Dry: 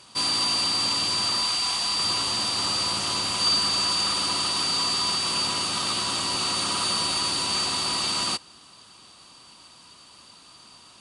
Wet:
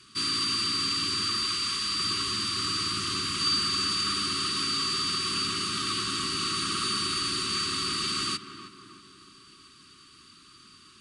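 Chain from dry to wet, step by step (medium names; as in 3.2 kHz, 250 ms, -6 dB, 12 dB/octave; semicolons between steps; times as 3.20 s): Chebyshev band-stop 410–1100 Hz, order 5; treble shelf 4.3 kHz -6.5 dB; on a send: tape echo 315 ms, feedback 62%, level -8.5 dB, low-pass 1.4 kHz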